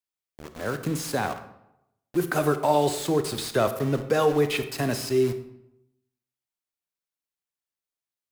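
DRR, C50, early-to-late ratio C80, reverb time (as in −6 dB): 9.0 dB, 11.0 dB, 13.5 dB, 0.85 s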